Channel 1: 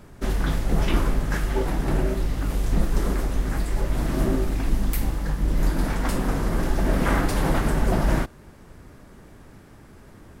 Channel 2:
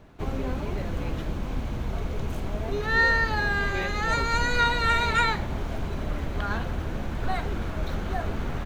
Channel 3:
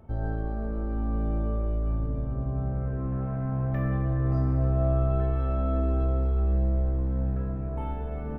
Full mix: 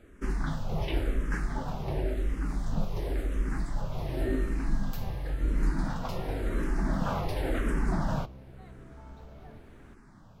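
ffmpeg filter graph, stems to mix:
-filter_complex "[0:a]highshelf=f=6100:g=-9,asplit=2[s0][s1];[s1]afreqshift=-0.93[s2];[s0][s2]amix=inputs=2:normalize=1,volume=1[s3];[1:a]adelay=1300,volume=0.112[s4];[2:a]adelay=1200,volume=0.282[s5];[s4][s5]amix=inputs=2:normalize=0,acompressor=threshold=0.0126:ratio=6,volume=1[s6];[s3][s6]amix=inputs=2:normalize=0,flanger=delay=6.1:depth=1.9:regen=-80:speed=0.87:shape=sinusoidal"

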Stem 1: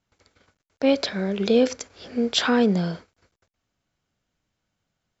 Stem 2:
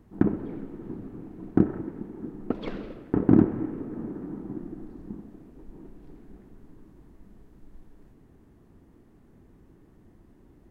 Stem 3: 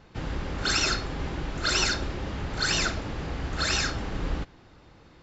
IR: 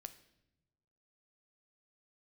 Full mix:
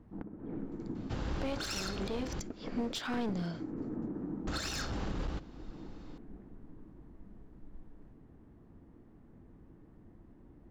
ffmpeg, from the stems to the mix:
-filter_complex "[0:a]bandreject=f=500:w=12,adelay=600,volume=0.473[s0];[1:a]acompressor=threshold=0.0251:ratio=8,lowpass=f=1700:p=1,bandreject=f=390:w=12,volume=0.891[s1];[2:a]equalizer=f=2100:w=1.7:g=-4.5,adelay=950,volume=0.596,asplit=3[s2][s3][s4];[s2]atrim=end=2.4,asetpts=PTS-STARTPTS,afade=t=out:st=2.396:d=0.004:c=hsin[s5];[s3]atrim=start=2.4:end=4.47,asetpts=PTS-STARTPTS,volume=0[s6];[s4]atrim=start=4.47,asetpts=PTS-STARTPTS,afade=t=in:d=0.004:c=hsin[s7];[s5][s6][s7]concat=n=3:v=0:a=1,asplit=2[s8][s9];[s9]volume=0.708[s10];[3:a]atrim=start_sample=2205[s11];[s10][s11]afir=irnorm=-1:irlink=0[s12];[s0][s1][s8][s12]amix=inputs=4:normalize=0,aeval=exprs='clip(val(0),-1,0.0376)':c=same,alimiter=level_in=1.26:limit=0.0631:level=0:latency=1:release=323,volume=0.794"

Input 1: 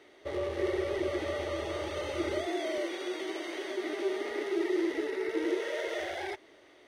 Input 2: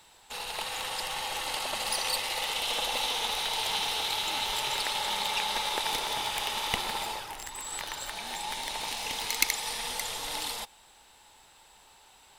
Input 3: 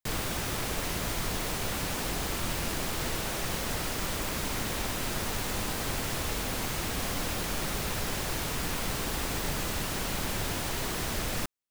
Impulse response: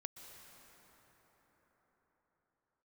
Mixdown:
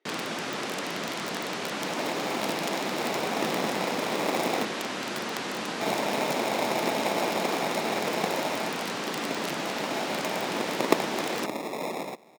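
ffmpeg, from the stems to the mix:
-filter_complex "[0:a]volume=0.126[s0];[1:a]acrusher=samples=29:mix=1:aa=0.000001,adelay=1500,volume=1.41,asplit=3[s1][s2][s3];[s1]atrim=end=4.65,asetpts=PTS-STARTPTS,afade=t=out:st=4.646:d=0.004:c=hsin[s4];[s2]atrim=start=4.65:end=5.81,asetpts=PTS-STARTPTS,volume=0[s5];[s3]atrim=start=5.81,asetpts=PTS-STARTPTS,afade=t=in:d=0.004:c=hsin[s6];[s4][s5][s6]concat=n=3:v=0:a=1[s7];[2:a]lowpass=5800,aeval=exprs='(mod(13.3*val(0)+1,2)-1)/13.3':c=same,volume=1.41[s8];[s0][s7][s8]amix=inputs=3:normalize=0,highpass=f=190:w=0.5412,highpass=f=190:w=1.3066,highshelf=f=5500:g=-4.5"

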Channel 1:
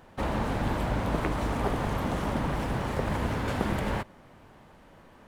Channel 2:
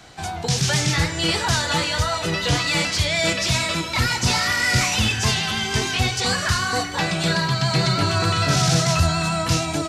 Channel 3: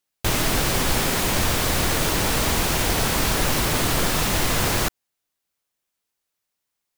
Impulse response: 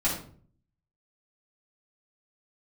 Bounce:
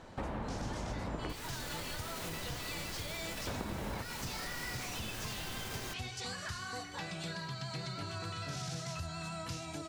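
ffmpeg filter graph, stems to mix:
-filter_complex "[0:a]lowpass=f=2700:p=1,volume=1.12,asplit=3[s0][s1][s2];[s0]atrim=end=1.33,asetpts=PTS-STARTPTS,afade=t=out:st=1.326:d=0.004:c=hsin[s3];[s1]atrim=start=1.33:end=3.47,asetpts=PTS-STARTPTS,volume=0[s4];[s2]atrim=start=3.47,asetpts=PTS-STARTPTS,afade=t=in:d=0.004:c=hsin[s5];[s3][s4][s5]concat=n=3:v=0:a=1[s6];[1:a]volume=0.15[s7];[2:a]alimiter=limit=0.168:level=0:latency=1,adelay=1050,volume=0.224[s8];[s6][s7][s8]amix=inputs=3:normalize=0,acompressor=threshold=0.0126:ratio=4"

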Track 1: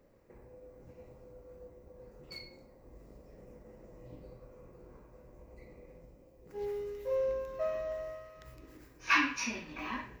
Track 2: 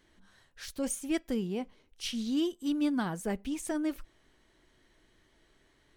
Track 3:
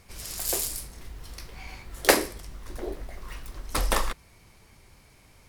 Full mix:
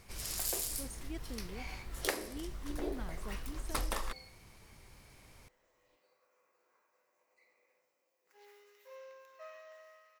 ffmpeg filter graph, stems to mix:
-filter_complex "[0:a]highpass=1300,adelay=1800,volume=0.562[s0];[1:a]volume=0.188[s1];[2:a]bandreject=f=86.26:t=h:w=4,bandreject=f=172.52:t=h:w=4,bandreject=f=258.78:t=h:w=4,bandreject=f=345.04:t=h:w=4,bandreject=f=431.3:t=h:w=4,bandreject=f=517.56:t=h:w=4,bandreject=f=603.82:t=h:w=4,bandreject=f=690.08:t=h:w=4,bandreject=f=776.34:t=h:w=4,volume=0.75[s2];[s0][s1][s2]amix=inputs=3:normalize=0,acompressor=threshold=0.0282:ratio=16"

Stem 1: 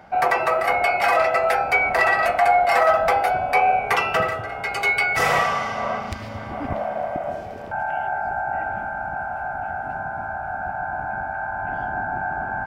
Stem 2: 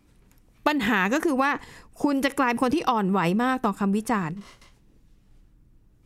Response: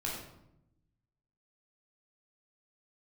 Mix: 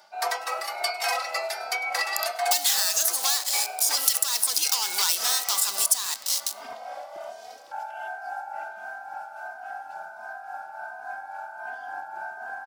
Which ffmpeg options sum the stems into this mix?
-filter_complex "[0:a]tremolo=f=3.6:d=0.48,asplit=2[s0][s1];[s1]adelay=3,afreqshift=1.4[s2];[s0][s2]amix=inputs=2:normalize=1,volume=0.841,asplit=2[s3][s4];[s4]volume=0.1[s5];[1:a]asplit=2[s6][s7];[s7]highpass=f=720:p=1,volume=17.8,asoftclip=type=tanh:threshold=0.447[s8];[s6][s8]amix=inputs=2:normalize=0,lowpass=f=7800:p=1,volume=0.501,aemphasis=mode=production:type=riaa,acrusher=bits=3:mix=0:aa=0.000001,adelay=1850,volume=0.335,asplit=2[s9][s10];[s10]volume=0.119[s11];[2:a]atrim=start_sample=2205[s12];[s11][s12]afir=irnorm=-1:irlink=0[s13];[s5]aecho=0:1:102|204|306|408|510|612|714|816|918:1|0.57|0.325|0.185|0.106|0.0602|0.0343|0.0195|0.0111[s14];[s3][s9][s13][s14]amix=inputs=4:normalize=0,highpass=760,highshelf=f=3200:t=q:w=1.5:g=12.5,acompressor=threshold=0.0891:ratio=4"

